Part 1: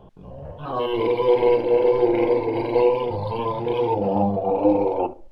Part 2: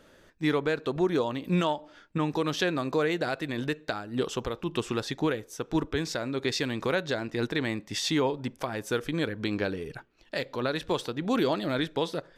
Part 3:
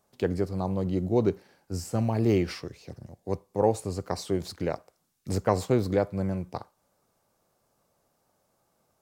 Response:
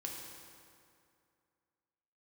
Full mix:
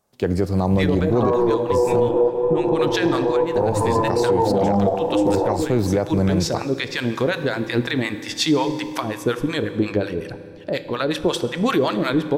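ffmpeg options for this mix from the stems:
-filter_complex "[0:a]afwtdn=0.0316,lowpass=f=1.4k:w=0.5412,lowpass=f=1.4k:w=1.3066,adelay=500,volume=-2dB,asplit=2[a][b];[b]volume=-15dB[c];[1:a]acrossover=split=720[d][e];[d]aeval=exprs='val(0)*(1-1/2+1/2*cos(2*PI*5.5*n/s))':c=same[f];[e]aeval=exprs='val(0)*(1-1/2-1/2*cos(2*PI*5.5*n/s))':c=same[g];[f][g]amix=inputs=2:normalize=0,adelay=350,volume=-4.5dB,asplit=2[h][i];[i]volume=-5dB[j];[2:a]volume=-0.5dB,asplit=3[k][l][m];[k]atrim=end=2.09,asetpts=PTS-STARTPTS,afade=t=out:st=2.086:d=0.004:c=hsin[n];[l]atrim=start=2.09:end=3.36,asetpts=PTS-STARTPTS,volume=0[o];[m]atrim=start=3.36,asetpts=PTS-STARTPTS,afade=t=in:d=0.004:c=hsin[p];[n][o][p]concat=n=3:v=0:a=1,asplit=3[q][r][s];[r]volume=-19.5dB[t];[s]apad=whole_len=256360[u];[a][u]sidechaingate=range=-14dB:threshold=-54dB:ratio=16:detection=peak[v];[3:a]atrim=start_sample=2205[w];[c][j][t]amix=inputs=3:normalize=0[x];[x][w]afir=irnorm=-1:irlink=0[y];[v][h][q][y]amix=inputs=4:normalize=0,dynaudnorm=f=160:g=3:m=14.5dB,alimiter=limit=-9.5dB:level=0:latency=1:release=80"

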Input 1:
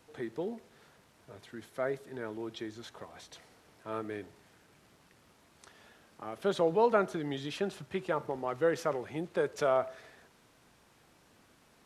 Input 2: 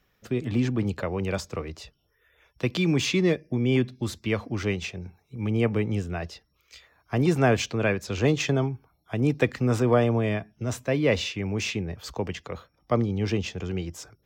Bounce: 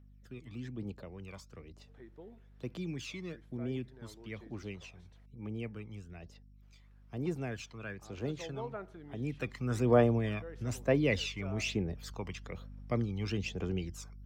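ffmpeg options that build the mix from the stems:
-filter_complex "[0:a]bass=f=250:g=2,treble=f=4k:g=-9,adelay=1800,volume=-16dB,asplit=3[a][b][c];[a]atrim=end=5.26,asetpts=PTS-STARTPTS,afade=t=out:st=5.256:d=0.004:c=hsin[d];[b]atrim=start=5.26:end=6.62,asetpts=PTS-STARTPTS,volume=0[e];[c]atrim=start=6.62,asetpts=PTS-STARTPTS,afade=t=in:d=0.004:c=hsin[f];[d][e][f]concat=n=3:v=0:a=1[g];[1:a]lowshelf=f=110:g=-7.5,aeval=exprs='val(0)+0.00562*(sin(2*PI*50*n/s)+sin(2*PI*2*50*n/s)/2+sin(2*PI*3*50*n/s)/3+sin(2*PI*4*50*n/s)/4+sin(2*PI*5*50*n/s)/5)':c=same,aphaser=in_gain=1:out_gain=1:delay=1:decay=0.6:speed=1.1:type=triangular,volume=-9dB,afade=t=in:st=9.13:d=0.78:silence=0.316228,asplit=2[h][i];[i]apad=whole_len=602347[j];[g][j]sidechaincompress=threshold=-35dB:ratio=8:attack=6.9:release=445[k];[k][h]amix=inputs=2:normalize=0"

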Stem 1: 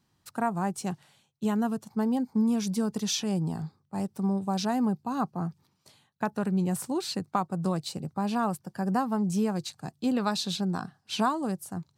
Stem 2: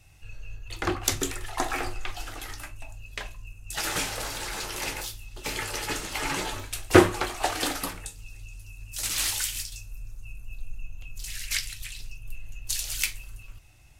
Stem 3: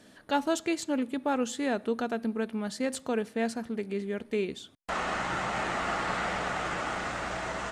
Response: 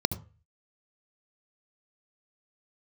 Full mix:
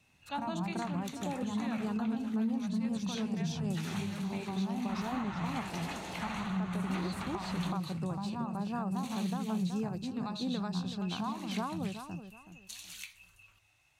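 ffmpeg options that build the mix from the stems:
-filter_complex "[0:a]highpass=56,lowshelf=f=95:g=10,volume=-4dB,asplit=4[a][b][c][d];[b]volume=-18.5dB[e];[c]volume=-5dB[f];[1:a]highpass=f=770:p=1,volume=-5.5dB,asplit=2[g][h];[h]volume=-22dB[i];[2:a]agate=range=-12dB:threshold=-46dB:ratio=16:detection=peak,volume=-9dB,asplit=2[j][k];[k]volume=-12.5dB[l];[d]apad=whole_len=340307[m];[j][m]sidechaingate=range=-33dB:threshold=-57dB:ratio=16:detection=peak[n];[a][g]amix=inputs=2:normalize=0,acompressor=threshold=-39dB:ratio=3,volume=0dB[o];[3:a]atrim=start_sample=2205[p];[e][i][l]amix=inputs=3:normalize=0[q];[q][p]afir=irnorm=-1:irlink=0[r];[f]aecho=0:1:374|748|1122|1496:1|0.26|0.0676|0.0176[s];[n][o][r][s]amix=inputs=4:normalize=0,highshelf=f=6.2k:g=-10,alimiter=level_in=1.5dB:limit=-24dB:level=0:latency=1:release=159,volume=-1.5dB"

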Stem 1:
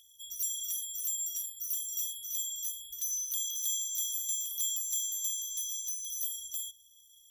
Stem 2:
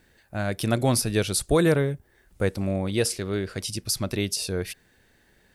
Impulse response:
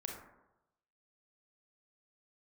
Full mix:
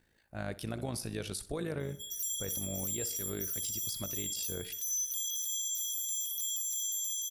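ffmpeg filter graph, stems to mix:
-filter_complex "[0:a]adelay=1800,volume=1.5dB,asplit=2[a][b];[b]volume=-17dB[c];[1:a]tremolo=f=54:d=0.667,volume=-8.5dB,asplit=3[d][e][f];[e]volume=-19.5dB[g];[f]volume=-18.5dB[h];[2:a]atrim=start_sample=2205[i];[g][i]afir=irnorm=-1:irlink=0[j];[c][h]amix=inputs=2:normalize=0,aecho=0:1:63|126|189|252|315:1|0.38|0.144|0.0549|0.0209[k];[a][d][j][k]amix=inputs=4:normalize=0,alimiter=level_in=2.5dB:limit=-24dB:level=0:latency=1:release=48,volume=-2.5dB"

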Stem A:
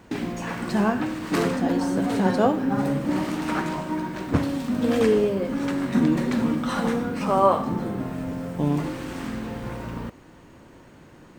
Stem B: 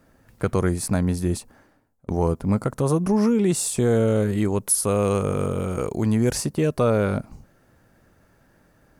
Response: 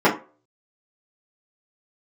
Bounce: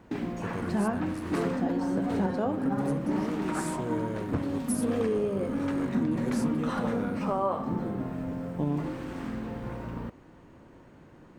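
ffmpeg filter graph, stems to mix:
-filter_complex "[0:a]highshelf=f=2.5k:g=-9.5,volume=-3.5dB[a];[1:a]volume=-15.5dB[b];[a][b]amix=inputs=2:normalize=0,alimiter=limit=-18.5dB:level=0:latency=1:release=201"

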